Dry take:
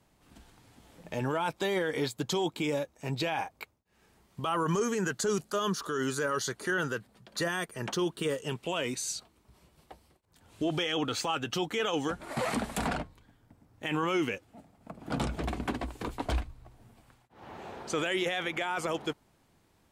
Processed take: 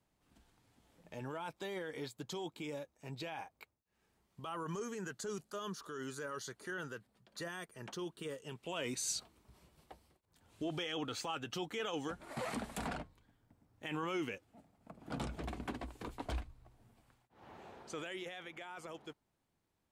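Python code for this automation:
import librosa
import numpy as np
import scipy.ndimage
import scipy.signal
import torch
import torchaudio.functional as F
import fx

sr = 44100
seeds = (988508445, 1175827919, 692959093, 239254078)

y = fx.gain(x, sr, db=fx.line((8.52, -12.5), (9.17, -1.0), (10.65, -9.0), (17.5, -9.0), (18.4, -16.0)))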